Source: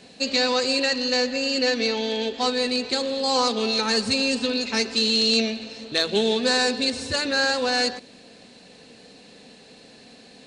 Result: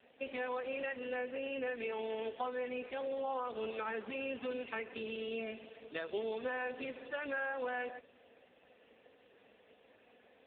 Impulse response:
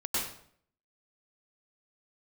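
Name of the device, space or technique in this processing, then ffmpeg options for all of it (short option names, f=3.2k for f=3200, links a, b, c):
voicemail: -af "highpass=410,lowpass=2.7k,acompressor=threshold=-26dB:ratio=8,volume=-7dB" -ar 8000 -c:a libopencore_amrnb -b:a 5150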